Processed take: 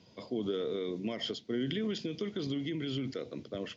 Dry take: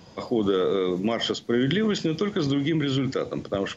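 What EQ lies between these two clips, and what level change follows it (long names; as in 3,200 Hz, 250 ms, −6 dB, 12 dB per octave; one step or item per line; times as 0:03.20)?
loudspeaker in its box 100–6,000 Hz, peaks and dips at 160 Hz −5 dB, 320 Hz −3 dB, 530 Hz −4 dB, 800 Hz −9 dB, 1,200 Hz −10 dB, 1,700 Hz −7 dB
−8.5 dB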